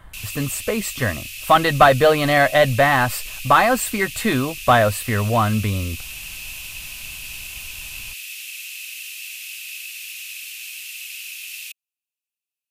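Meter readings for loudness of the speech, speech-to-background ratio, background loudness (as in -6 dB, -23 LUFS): -18.0 LUFS, 13.5 dB, -31.5 LUFS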